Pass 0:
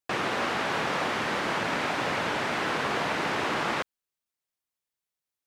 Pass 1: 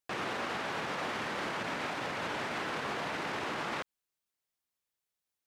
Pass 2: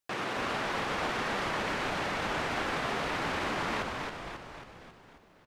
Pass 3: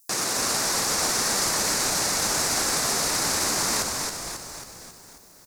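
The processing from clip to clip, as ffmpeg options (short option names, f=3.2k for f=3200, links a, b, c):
-af "alimiter=level_in=3.5dB:limit=-24dB:level=0:latency=1:release=80,volume=-3.5dB"
-filter_complex "[0:a]asplit=9[a][b][c][d][e][f][g][h][i];[b]adelay=271,afreqshift=-90,volume=-3.5dB[j];[c]adelay=542,afreqshift=-180,volume=-8.2dB[k];[d]adelay=813,afreqshift=-270,volume=-13dB[l];[e]adelay=1084,afreqshift=-360,volume=-17.7dB[m];[f]adelay=1355,afreqshift=-450,volume=-22.4dB[n];[g]adelay=1626,afreqshift=-540,volume=-27.2dB[o];[h]adelay=1897,afreqshift=-630,volume=-31.9dB[p];[i]adelay=2168,afreqshift=-720,volume=-36.6dB[q];[a][j][k][l][m][n][o][p][q]amix=inputs=9:normalize=0,volume=1.5dB"
-af "aexciter=amount=14.9:drive=5.3:freq=4.7k,volume=3dB"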